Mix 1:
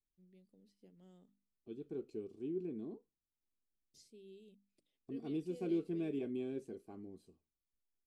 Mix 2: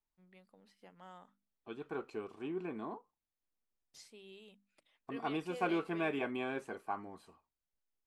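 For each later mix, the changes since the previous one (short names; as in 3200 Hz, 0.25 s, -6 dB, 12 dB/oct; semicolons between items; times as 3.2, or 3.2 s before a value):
master: remove EQ curve 390 Hz 0 dB, 950 Hz -27 dB, 1400 Hz -25 dB, 4700 Hz -7 dB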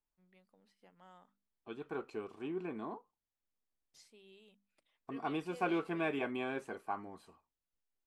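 first voice -5.5 dB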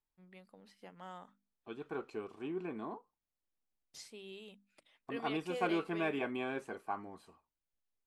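first voice +10.5 dB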